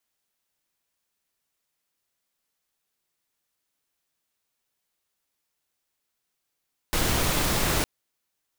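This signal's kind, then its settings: noise pink, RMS -24 dBFS 0.91 s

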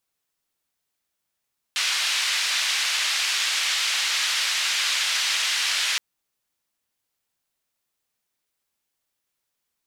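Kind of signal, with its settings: noise band 1.9–4.3 kHz, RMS -24 dBFS 4.22 s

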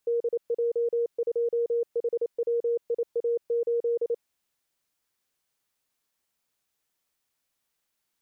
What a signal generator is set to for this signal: Morse "DJ2HWIA8" 28 wpm 470 Hz -22.5 dBFS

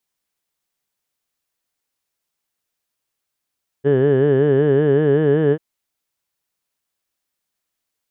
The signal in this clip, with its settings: formant vowel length 1.74 s, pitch 135 Hz, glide +2 st, vibrato depth 1.15 st, F1 420 Hz, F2 1.7 kHz, F3 3 kHz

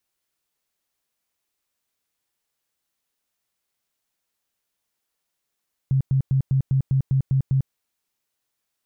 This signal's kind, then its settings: tone bursts 134 Hz, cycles 13, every 0.20 s, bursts 9, -16 dBFS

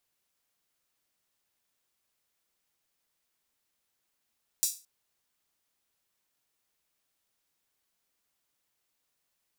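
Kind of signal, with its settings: open hi-hat length 0.22 s, high-pass 6 kHz, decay 0.31 s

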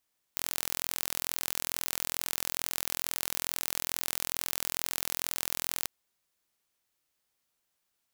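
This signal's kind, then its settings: pulse train 42.3 per s, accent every 0, -4.5 dBFS 5.49 s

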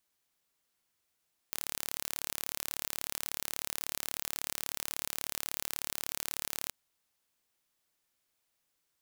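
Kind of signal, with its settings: pulse train 36.4 per s, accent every 0, -8 dBFS 5.18 s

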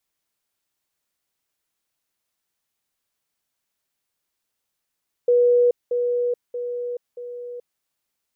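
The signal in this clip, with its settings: level ladder 486 Hz -13 dBFS, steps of -6 dB, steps 4, 0.43 s 0.20 s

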